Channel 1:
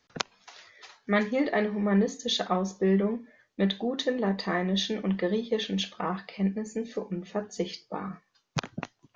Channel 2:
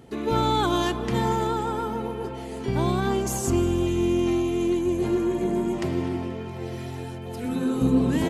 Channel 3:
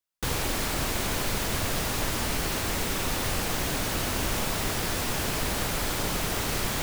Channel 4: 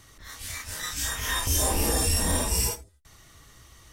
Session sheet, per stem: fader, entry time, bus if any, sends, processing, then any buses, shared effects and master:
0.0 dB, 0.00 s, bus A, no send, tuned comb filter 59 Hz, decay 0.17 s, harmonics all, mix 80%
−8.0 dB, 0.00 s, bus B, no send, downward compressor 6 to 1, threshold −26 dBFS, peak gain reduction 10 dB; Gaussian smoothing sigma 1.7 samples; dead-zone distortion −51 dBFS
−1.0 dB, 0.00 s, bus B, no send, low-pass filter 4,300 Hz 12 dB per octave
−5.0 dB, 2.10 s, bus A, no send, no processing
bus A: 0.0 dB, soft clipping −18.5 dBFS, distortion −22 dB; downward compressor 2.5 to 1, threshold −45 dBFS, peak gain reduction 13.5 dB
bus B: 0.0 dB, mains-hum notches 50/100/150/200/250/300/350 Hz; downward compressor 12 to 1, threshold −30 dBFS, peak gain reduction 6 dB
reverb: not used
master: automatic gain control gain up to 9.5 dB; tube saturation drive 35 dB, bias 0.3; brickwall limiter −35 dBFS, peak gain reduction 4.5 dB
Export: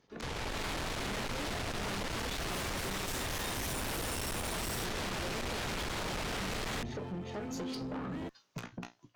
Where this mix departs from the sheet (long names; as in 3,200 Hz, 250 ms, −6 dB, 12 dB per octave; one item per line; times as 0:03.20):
stem 2 −8.0 dB → −14.0 dB
stem 4 −5.0 dB → +4.0 dB
master: missing brickwall limiter −35 dBFS, peak gain reduction 4.5 dB